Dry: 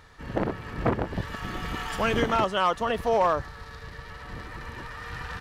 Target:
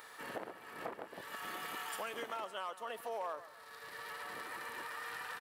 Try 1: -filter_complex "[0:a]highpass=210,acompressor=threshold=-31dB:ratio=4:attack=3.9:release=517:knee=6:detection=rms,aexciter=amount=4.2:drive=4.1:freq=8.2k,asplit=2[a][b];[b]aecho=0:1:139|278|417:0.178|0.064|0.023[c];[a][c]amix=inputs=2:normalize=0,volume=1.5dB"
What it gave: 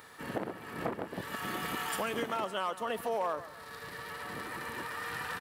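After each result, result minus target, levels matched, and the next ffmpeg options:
compressor: peak gain reduction -8 dB; 250 Hz band +7.0 dB
-filter_complex "[0:a]highpass=210,acompressor=threshold=-41dB:ratio=4:attack=3.9:release=517:knee=6:detection=rms,aexciter=amount=4.2:drive=4.1:freq=8.2k,asplit=2[a][b];[b]aecho=0:1:139|278|417:0.178|0.064|0.023[c];[a][c]amix=inputs=2:normalize=0,volume=1.5dB"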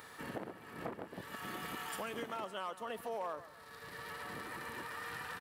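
250 Hz band +7.0 dB
-filter_complex "[0:a]highpass=460,acompressor=threshold=-41dB:ratio=4:attack=3.9:release=517:knee=6:detection=rms,aexciter=amount=4.2:drive=4.1:freq=8.2k,asplit=2[a][b];[b]aecho=0:1:139|278|417:0.178|0.064|0.023[c];[a][c]amix=inputs=2:normalize=0,volume=1.5dB"

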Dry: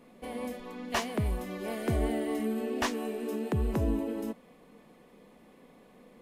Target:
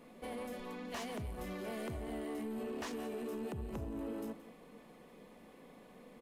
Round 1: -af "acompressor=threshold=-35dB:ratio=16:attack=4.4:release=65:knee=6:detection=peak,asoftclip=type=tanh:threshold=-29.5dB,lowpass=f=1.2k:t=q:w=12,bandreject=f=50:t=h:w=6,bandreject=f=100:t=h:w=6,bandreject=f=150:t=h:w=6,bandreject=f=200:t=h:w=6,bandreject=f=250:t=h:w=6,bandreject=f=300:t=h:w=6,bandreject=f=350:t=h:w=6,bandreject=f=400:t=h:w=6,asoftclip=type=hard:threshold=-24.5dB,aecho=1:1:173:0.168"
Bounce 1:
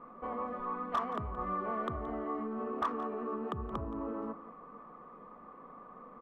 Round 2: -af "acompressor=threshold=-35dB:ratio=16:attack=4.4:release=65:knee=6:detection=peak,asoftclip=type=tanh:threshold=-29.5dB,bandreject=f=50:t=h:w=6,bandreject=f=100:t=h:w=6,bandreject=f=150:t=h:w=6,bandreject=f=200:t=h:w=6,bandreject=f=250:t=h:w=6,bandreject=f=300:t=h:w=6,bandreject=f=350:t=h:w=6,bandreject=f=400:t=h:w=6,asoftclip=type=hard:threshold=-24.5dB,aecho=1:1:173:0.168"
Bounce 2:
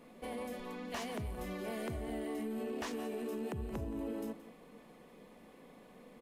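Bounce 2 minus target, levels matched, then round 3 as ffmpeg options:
soft clip: distortion -8 dB
-af "acompressor=threshold=-35dB:ratio=16:attack=4.4:release=65:knee=6:detection=peak,asoftclip=type=tanh:threshold=-35.5dB,bandreject=f=50:t=h:w=6,bandreject=f=100:t=h:w=6,bandreject=f=150:t=h:w=6,bandreject=f=200:t=h:w=6,bandreject=f=250:t=h:w=6,bandreject=f=300:t=h:w=6,bandreject=f=350:t=h:w=6,bandreject=f=400:t=h:w=6,asoftclip=type=hard:threshold=-24.5dB,aecho=1:1:173:0.168"

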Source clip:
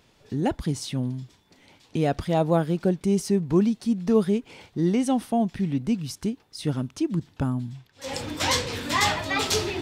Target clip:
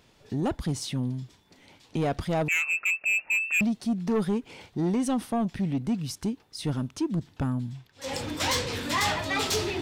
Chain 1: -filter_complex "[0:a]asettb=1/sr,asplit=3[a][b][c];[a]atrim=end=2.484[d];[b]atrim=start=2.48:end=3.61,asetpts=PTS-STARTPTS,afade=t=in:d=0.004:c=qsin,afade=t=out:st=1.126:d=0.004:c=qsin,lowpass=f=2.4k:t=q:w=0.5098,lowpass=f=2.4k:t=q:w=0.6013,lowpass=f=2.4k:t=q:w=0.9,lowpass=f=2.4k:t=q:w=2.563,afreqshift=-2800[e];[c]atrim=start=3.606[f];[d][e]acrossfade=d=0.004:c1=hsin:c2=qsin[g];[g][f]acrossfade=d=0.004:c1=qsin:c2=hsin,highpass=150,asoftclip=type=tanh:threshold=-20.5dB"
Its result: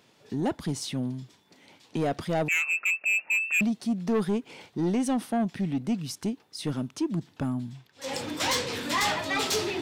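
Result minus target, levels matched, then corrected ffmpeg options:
125 Hz band -3.0 dB
-filter_complex "[0:a]asettb=1/sr,asplit=3[a][b][c];[a]atrim=end=2.484[d];[b]atrim=start=2.48:end=3.61,asetpts=PTS-STARTPTS,afade=t=in:d=0.004:c=qsin,afade=t=out:st=1.126:d=0.004:c=qsin,lowpass=f=2.4k:t=q:w=0.5098,lowpass=f=2.4k:t=q:w=0.6013,lowpass=f=2.4k:t=q:w=0.9,lowpass=f=2.4k:t=q:w=2.563,afreqshift=-2800[e];[c]atrim=start=3.606[f];[d][e]acrossfade=d=0.004:c1=hsin:c2=qsin[g];[g][f]acrossfade=d=0.004:c1=qsin:c2=hsin,asoftclip=type=tanh:threshold=-20.5dB"

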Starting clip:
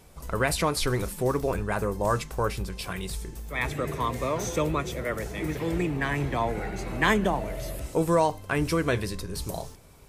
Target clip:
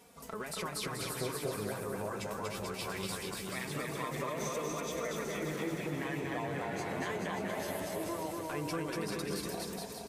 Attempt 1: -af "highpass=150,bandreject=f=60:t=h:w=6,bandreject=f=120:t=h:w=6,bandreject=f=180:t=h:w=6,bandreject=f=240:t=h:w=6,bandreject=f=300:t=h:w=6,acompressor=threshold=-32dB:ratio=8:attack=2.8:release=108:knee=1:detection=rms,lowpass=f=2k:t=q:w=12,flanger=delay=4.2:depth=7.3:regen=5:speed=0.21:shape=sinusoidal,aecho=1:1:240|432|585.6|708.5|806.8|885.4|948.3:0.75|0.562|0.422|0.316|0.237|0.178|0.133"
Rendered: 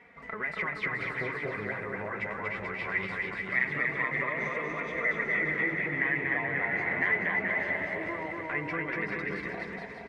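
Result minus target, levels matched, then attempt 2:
2000 Hz band +8.0 dB
-af "highpass=150,bandreject=f=60:t=h:w=6,bandreject=f=120:t=h:w=6,bandreject=f=180:t=h:w=6,bandreject=f=240:t=h:w=6,bandreject=f=300:t=h:w=6,acompressor=threshold=-32dB:ratio=8:attack=2.8:release=108:knee=1:detection=rms,flanger=delay=4.2:depth=7.3:regen=5:speed=0.21:shape=sinusoidal,aecho=1:1:240|432|585.6|708.5|806.8|885.4|948.3:0.75|0.562|0.422|0.316|0.237|0.178|0.133"

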